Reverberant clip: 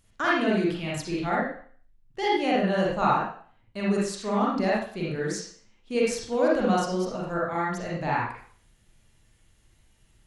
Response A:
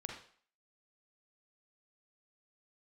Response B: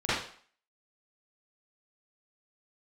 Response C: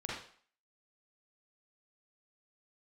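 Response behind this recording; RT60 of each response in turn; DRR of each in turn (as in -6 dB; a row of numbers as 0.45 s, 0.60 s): C; 0.50 s, 0.50 s, 0.50 s; 0.5 dB, -14.0 dB, -5.5 dB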